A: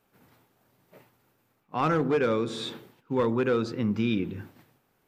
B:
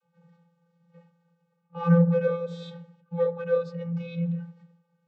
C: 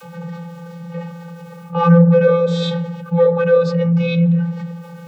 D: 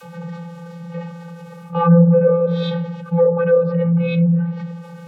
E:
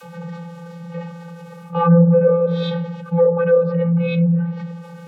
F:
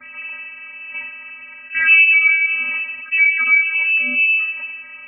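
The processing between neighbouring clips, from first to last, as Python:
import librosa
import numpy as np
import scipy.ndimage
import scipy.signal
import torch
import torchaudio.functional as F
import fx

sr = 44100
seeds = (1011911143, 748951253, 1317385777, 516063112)

y1 = fx.vocoder(x, sr, bands=32, carrier='square', carrier_hz=170.0)
y1 = y1 * 10.0 ** (2.0 / 20.0)
y2 = fx.env_flatten(y1, sr, amount_pct=50)
y2 = y2 * 10.0 ** (8.0 / 20.0)
y3 = fx.env_lowpass_down(y2, sr, base_hz=910.0, full_db=-10.0)
y3 = y3 * 10.0 ** (-1.0 / 20.0)
y4 = scipy.signal.sosfilt(scipy.signal.butter(2, 120.0, 'highpass', fs=sr, output='sos'), y3)
y5 = fx.freq_invert(y4, sr, carrier_hz=2800)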